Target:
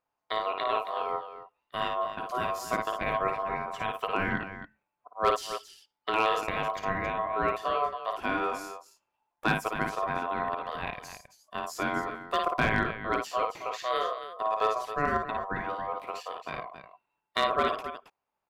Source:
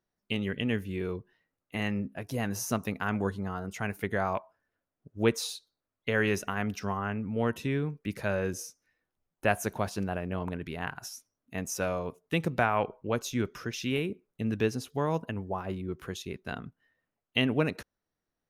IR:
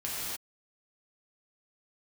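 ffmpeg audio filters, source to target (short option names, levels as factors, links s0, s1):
-filter_complex "[0:a]bass=f=250:g=2,treble=f=4000:g=-8,asplit=2[s0][s1];[s1]aecho=0:1:55.39|271.1:0.562|0.282[s2];[s0][s2]amix=inputs=2:normalize=0,aeval=exprs='val(0)*sin(2*PI*870*n/s)':c=same,volume=7.08,asoftclip=hard,volume=0.141,volume=1.26"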